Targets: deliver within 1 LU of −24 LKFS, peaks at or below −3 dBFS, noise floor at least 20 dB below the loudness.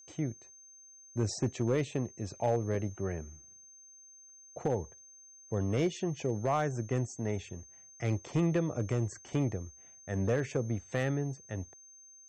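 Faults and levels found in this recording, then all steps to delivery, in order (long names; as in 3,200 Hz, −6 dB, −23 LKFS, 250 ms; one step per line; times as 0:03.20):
share of clipped samples 0.5%; peaks flattened at −21.5 dBFS; interfering tone 6,300 Hz; level of the tone −53 dBFS; integrated loudness −34.0 LKFS; sample peak −21.5 dBFS; target loudness −24.0 LKFS
→ clipped peaks rebuilt −21.5 dBFS
notch filter 6,300 Hz, Q 30
level +10 dB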